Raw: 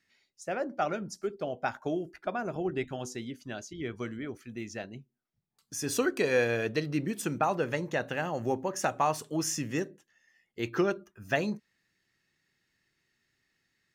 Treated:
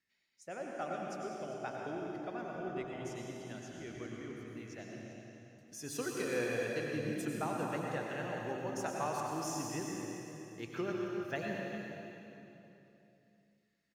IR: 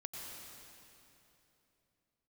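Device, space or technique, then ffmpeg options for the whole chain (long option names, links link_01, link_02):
cave: -filter_complex "[0:a]aecho=1:1:397:0.224[link_01];[1:a]atrim=start_sample=2205[link_02];[link_01][link_02]afir=irnorm=-1:irlink=0,volume=-6dB"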